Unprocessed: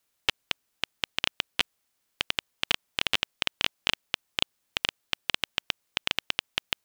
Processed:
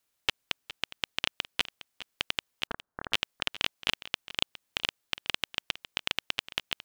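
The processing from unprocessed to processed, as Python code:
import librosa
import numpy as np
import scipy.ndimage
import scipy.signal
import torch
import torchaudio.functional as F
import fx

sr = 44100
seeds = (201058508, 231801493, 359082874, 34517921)

y = fx.steep_lowpass(x, sr, hz=1700.0, slope=72, at=(2.67, 3.11))
y = y + 10.0 ** (-15.5 / 20.0) * np.pad(y, (int(411 * sr / 1000.0), 0))[:len(y)]
y = F.gain(torch.from_numpy(y), -2.5).numpy()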